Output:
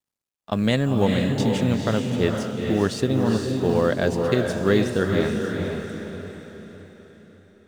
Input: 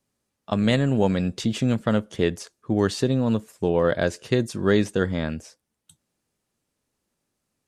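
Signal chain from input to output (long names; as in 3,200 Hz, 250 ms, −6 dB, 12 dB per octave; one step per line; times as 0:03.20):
mu-law and A-law mismatch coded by A
on a send: feedback delay with all-pass diffusion 461 ms, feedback 46%, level −3 dB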